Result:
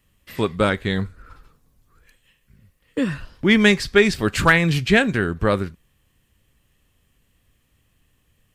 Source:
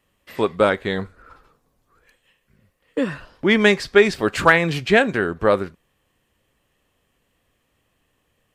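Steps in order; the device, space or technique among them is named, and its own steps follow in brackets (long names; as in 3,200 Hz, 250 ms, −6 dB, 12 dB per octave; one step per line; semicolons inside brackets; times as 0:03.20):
smiley-face EQ (low-shelf EQ 170 Hz +8.5 dB; parametric band 630 Hz −7.5 dB 2.2 octaves; high-shelf EQ 8,800 Hz +4.5 dB)
level +2 dB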